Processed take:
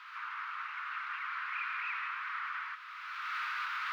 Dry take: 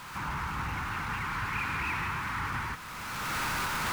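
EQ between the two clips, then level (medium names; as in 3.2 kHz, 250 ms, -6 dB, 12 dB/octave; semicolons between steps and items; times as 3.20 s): elliptic high-pass 1.2 kHz, stop band 80 dB; distance through air 320 m; treble shelf 11 kHz +4.5 dB; 0.0 dB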